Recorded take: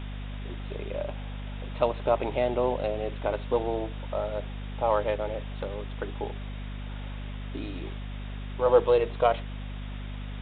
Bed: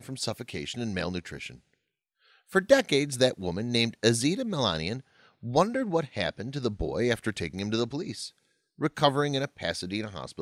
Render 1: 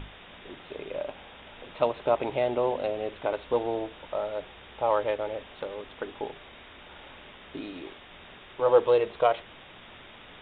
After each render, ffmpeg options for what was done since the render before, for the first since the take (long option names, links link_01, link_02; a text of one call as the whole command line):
ffmpeg -i in.wav -af "bandreject=frequency=50:width_type=h:width=6,bandreject=frequency=100:width_type=h:width=6,bandreject=frequency=150:width_type=h:width=6,bandreject=frequency=200:width_type=h:width=6,bandreject=frequency=250:width_type=h:width=6" out.wav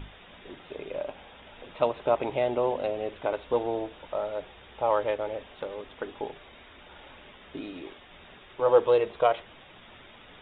ffmpeg -i in.wav -af "afftdn=noise_reduction=6:noise_floor=-49" out.wav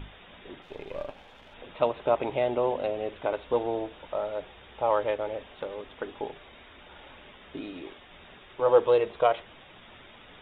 ffmpeg -i in.wav -filter_complex "[0:a]asettb=1/sr,asplit=3[link_01][link_02][link_03];[link_01]atrim=end=0.624[link_04];[link_02]atrim=start=0.62:end=1.54,asetpts=PTS-STARTPTS,afade=type=in:duration=0.004:curve=qsin,afade=type=out:start_time=0.916:duration=0.004:curve=qsin,aeval=exprs='if(lt(val(0),0),0.447*val(0),val(0))':channel_layout=same[link_05];[link_03]atrim=start=1.536[link_06];[link_04][link_05]acrossfade=duration=0.004:curve1=hsin:curve2=qsin[link_07];[link_07][link_06]acrossfade=duration=0.004:curve1=qsin:curve2=hsin" out.wav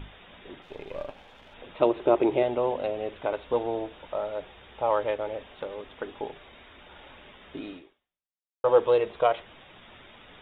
ffmpeg -i in.wav -filter_complex "[0:a]asettb=1/sr,asplit=3[link_01][link_02][link_03];[link_01]atrim=end=1.804[link_04];[link_02]atrim=start=1.8:end=2.43,asetpts=PTS-STARTPTS,afade=type=in:duration=0.004:curve=qsin,afade=type=out:start_time=0.626:duration=0.004:curve=qsin,equalizer=frequency=350:width=2.9:gain=14.5[link_05];[link_03]atrim=start=2.426[link_06];[link_04][link_05]acrossfade=duration=0.004:curve1=hsin:curve2=qsin[link_07];[link_07][link_06]acrossfade=duration=0.004:curve1=qsin:curve2=hsin,asplit=2[link_08][link_09];[link_08]atrim=end=8.64,asetpts=PTS-STARTPTS,afade=type=out:start_time=7.73:duration=0.91:curve=exp[link_10];[link_09]atrim=start=8.64,asetpts=PTS-STARTPTS,afade=type=in:duration=0.004:curve=hsin[link_11];[link_10][link_11]concat=n=2:v=0:a=1" out.wav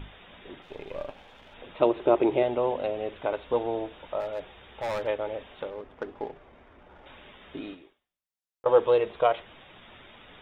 ffmpeg -i in.wav -filter_complex "[0:a]asettb=1/sr,asplit=3[link_01][link_02][link_03];[link_01]atrim=end=4.204[link_04];[link_02]atrim=start=4.2:end=5.07,asetpts=PTS-STARTPTS,afade=type=in:duration=0.004:curve=qsin,afade=type=out:start_time=0.866:duration=0.004:curve=qsin,asoftclip=type=hard:threshold=-27.5dB[link_05];[link_03]atrim=start=5.066[link_06];[link_04][link_05]acrossfade=duration=0.004:curve1=hsin:curve2=qsin[link_07];[link_07][link_06]acrossfade=duration=0.004:curve1=qsin:curve2=hsin,asettb=1/sr,asplit=3[link_08][link_09][link_10];[link_08]atrim=end=5.704[link_11];[link_09]atrim=start=5.7:end=7.06,asetpts=PTS-STARTPTS,afade=type=in:duration=0.004:curve=qsin,afade=type=out:start_time=1.356:duration=0.004:curve=qsin,adynamicsmooth=sensitivity=4:basefreq=1300[link_12];[link_10]atrim=start=7.056[link_13];[link_11][link_12]acrossfade=duration=0.004:curve1=hsin:curve2=qsin[link_14];[link_14][link_13]acrossfade=duration=0.004:curve1=qsin:curve2=hsin,asettb=1/sr,asplit=3[link_15][link_16][link_17];[link_15]atrim=end=7.744[link_18];[link_16]atrim=start=7.74:end=8.66,asetpts=PTS-STARTPTS,afade=type=in:duration=0.004:curve=qsin,afade=type=out:start_time=0.916:duration=0.004:curve=qsin,acompressor=threshold=-46dB:ratio=6:attack=3.2:release=140:knee=1:detection=peak[link_19];[link_17]atrim=start=8.656[link_20];[link_18][link_19]acrossfade=duration=0.004:curve1=hsin:curve2=qsin[link_21];[link_21][link_20]acrossfade=duration=0.004:curve1=qsin:curve2=hsin" out.wav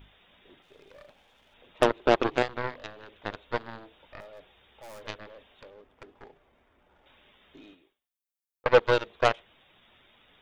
ffmpeg -i in.wav -af "crystalizer=i=2.5:c=0,aeval=exprs='0.447*(cos(1*acos(clip(val(0)/0.447,-1,1)))-cos(1*PI/2))+0.0141*(cos(6*acos(clip(val(0)/0.447,-1,1)))-cos(6*PI/2))+0.0794*(cos(7*acos(clip(val(0)/0.447,-1,1)))-cos(7*PI/2))':channel_layout=same" out.wav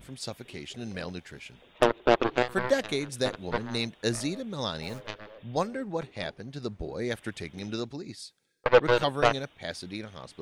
ffmpeg -i in.wav -i bed.wav -filter_complex "[1:a]volume=-5.5dB[link_01];[0:a][link_01]amix=inputs=2:normalize=0" out.wav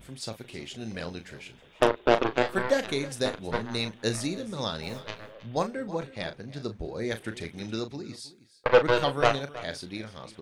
ffmpeg -i in.wav -filter_complex "[0:a]asplit=2[link_01][link_02];[link_02]adelay=36,volume=-10dB[link_03];[link_01][link_03]amix=inputs=2:normalize=0,aecho=1:1:319:0.133" out.wav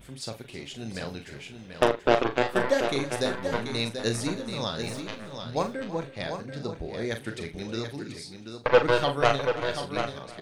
ffmpeg -i in.wav -filter_complex "[0:a]asplit=2[link_01][link_02];[link_02]adelay=43,volume=-11dB[link_03];[link_01][link_03]amix=inputs=2:normalize=0,asplit=2[link_04][link_05];[link_05]aecho=0:1:735:0.398[link_06];[link_04][link_06]amix=inputs=2:normalize=0" out.wav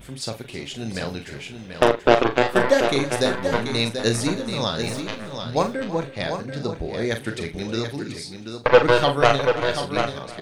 ffmpeg -i in.wav -af "volume=6.5dB,alimiter=limit=-2dB:level=0:latency=1" out.wav